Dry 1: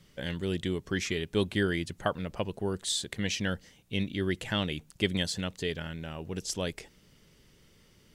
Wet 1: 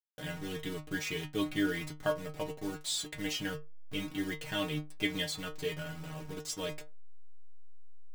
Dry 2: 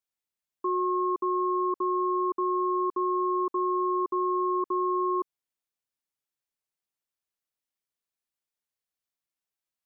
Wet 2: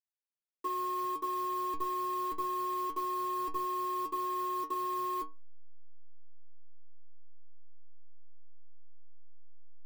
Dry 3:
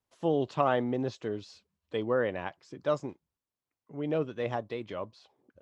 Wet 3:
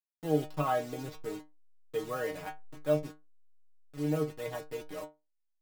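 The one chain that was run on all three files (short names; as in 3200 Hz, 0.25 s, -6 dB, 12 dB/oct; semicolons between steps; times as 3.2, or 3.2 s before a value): level-crossing sampler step -37.5 dBFS; metallic resonator 150 Hz, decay 0.24 s, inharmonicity 0.002; gain +7 dB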